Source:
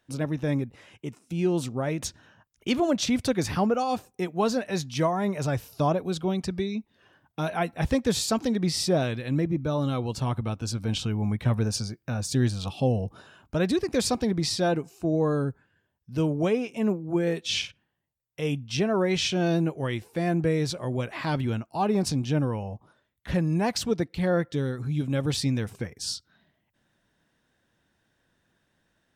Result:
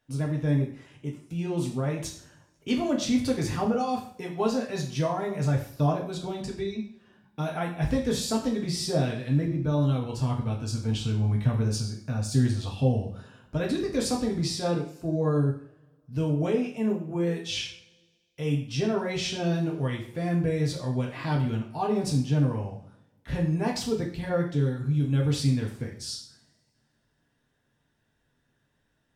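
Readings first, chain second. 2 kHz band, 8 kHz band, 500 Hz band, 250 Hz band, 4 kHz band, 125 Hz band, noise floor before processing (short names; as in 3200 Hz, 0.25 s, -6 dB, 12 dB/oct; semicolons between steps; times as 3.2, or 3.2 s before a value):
-3.5 dB, -3.0 dB, -2.5 dB, -1.0 dB, -3.5 dB, +2.0 dB, -74 dBFS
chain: low shelf 210 Hz +6 dB; two-slope reverb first 0.48 s, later 1.9 s, from -26 dB, DRR -1.5 dB; gain -7 dB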